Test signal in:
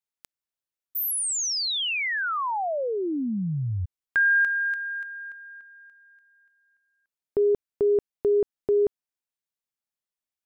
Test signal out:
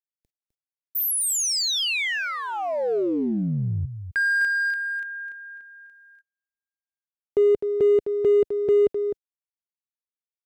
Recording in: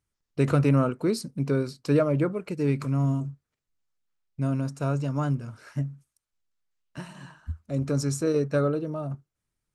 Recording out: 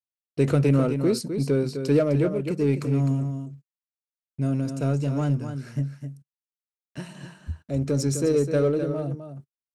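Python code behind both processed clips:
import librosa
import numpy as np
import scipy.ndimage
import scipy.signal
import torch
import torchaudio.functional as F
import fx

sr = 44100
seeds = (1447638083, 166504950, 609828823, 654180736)

p1 = fx.highpass(x, sr, hz=59.0, slope=6)
p2 = p1 + fx.echo_single(p1, sr, ms=256, db=-9.5, dry=0)
p3 = fx.gate_hold(p2, sr, open_db=-52.0, close_db=-54.0, hold_ms=11.0, range_db=-35, attack_ms=0.7, release_ms=24.0)
p4 = fx.peak_eq(p3, sr, hz=420.0, db=3.0, octaves=0.61)
p5 = np.clip(p4, -10.0 ** (-26.0 / 20.0), 10.0 ** (-26.0 / 20.0))
p6 = p4 + F.gain(torch.from_numpy(p5), -7.0).numpy()
y = fx.peak_eq(p6, sr, hz=1100.0, db=-7.5, octaves=0.98)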